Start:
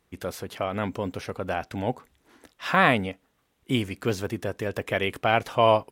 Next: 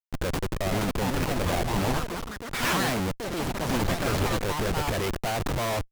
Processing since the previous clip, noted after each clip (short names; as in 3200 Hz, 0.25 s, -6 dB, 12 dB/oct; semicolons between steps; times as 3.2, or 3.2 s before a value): Schmitt trigger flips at -33.5 dBFS; echoes that change speed 0.562 s, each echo +5 st, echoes 3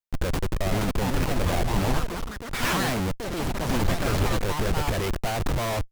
low shelf 78 Hz +8 dB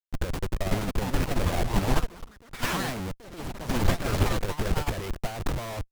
upward expander 2.5:1, over -32 dBFS; gain +4 dB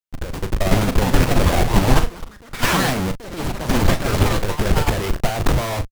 AGC gain up to 12 dB; doubler 38 ms -10 dB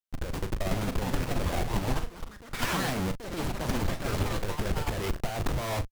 compressor 3:1, threshold -23 dBFS, peak gain reduction 12 dB; gain -4.5 dB